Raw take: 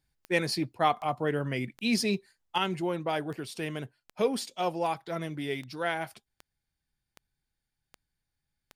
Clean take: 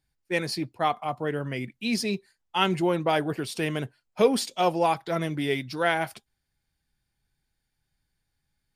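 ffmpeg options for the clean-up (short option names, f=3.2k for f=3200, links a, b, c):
-af "adeclick=t=4,asetnsamples=n=441:p=0,asendcmd='2.58 volume volume 6.5dB',volume=0dB"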